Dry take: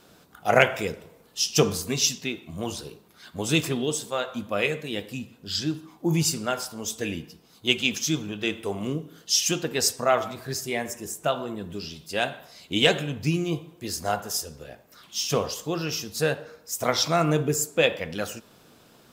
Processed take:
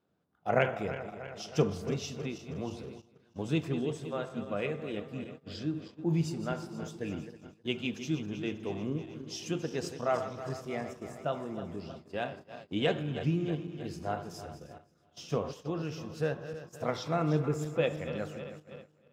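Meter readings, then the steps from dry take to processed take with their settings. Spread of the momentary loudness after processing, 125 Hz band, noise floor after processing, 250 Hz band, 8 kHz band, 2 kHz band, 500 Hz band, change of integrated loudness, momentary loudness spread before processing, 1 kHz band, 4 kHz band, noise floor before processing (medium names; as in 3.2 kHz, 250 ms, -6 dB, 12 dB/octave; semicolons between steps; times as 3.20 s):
13 LU, -4.0 dB, -66 dBFS, -5.0 dB, -21.5 dB, -12.0 dB, -6.5 dB, -9.0 dB, 12 LU, -8.5 dB, -16.5 dB, -56 dBFS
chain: backward echo that repeats 159 ms, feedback 77%, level -11.5 dB; low-pass 2.2 kHz 6 dB/octave; gate -39 dBFS, range -15 dB; high-pass 76 Hz; tilt EQ -1.5 dB/octave; endings held to a fixed fall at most 390 dB/s; trim -8.5 dB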